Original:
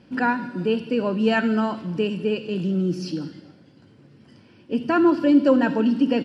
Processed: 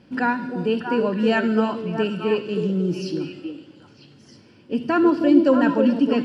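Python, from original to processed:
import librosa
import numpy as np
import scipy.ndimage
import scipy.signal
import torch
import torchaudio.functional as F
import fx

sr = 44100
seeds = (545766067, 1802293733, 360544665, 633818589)

y = fx.echo_stepped(x, sr, ms=316, hz=400.0, octaves=1.4, feedback_pct=70, wet_db=-2)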